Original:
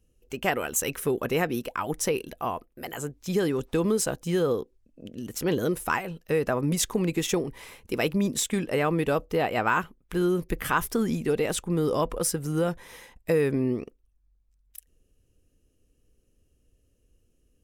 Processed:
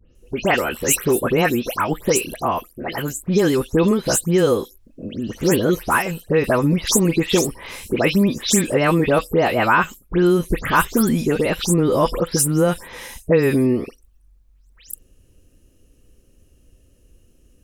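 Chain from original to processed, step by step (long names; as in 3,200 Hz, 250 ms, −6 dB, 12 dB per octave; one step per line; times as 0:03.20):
every frequency bin delayed by itself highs late, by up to 151 ms
in parallel at −2.5 dB: downward compressor, threshold −40 dBFS, peak gain reduction 19 dB
on the sum: level +8 dB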